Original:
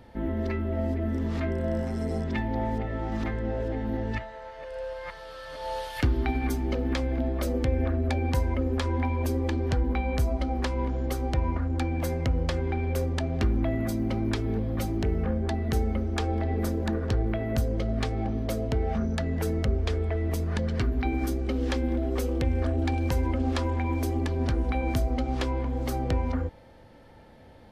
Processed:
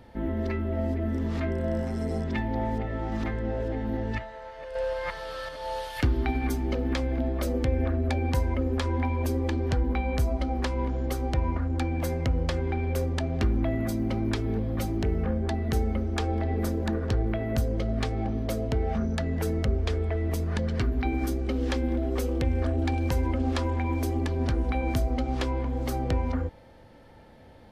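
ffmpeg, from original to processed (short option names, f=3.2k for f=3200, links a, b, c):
-filter_complex "[0:a]asettb=1/sr,asplit=3[a][b][c];[a]atrim=end=4.754[d];[b]atrim=start=4.75:end=5.49,asetpts=PTS-STARTPTS,afade=t=in:d=0.004:c=qsin,afade=t=out:st=0.736:d=0.004:c=qsin,acontrast=49[e];[c]atrim=start=5.486[f];[d][e]acrossfade=d=0.004:c1=hsin:c2=qsin[g];[g][f]acrossfade=d=0.004:c1=qsin:c2=hsin"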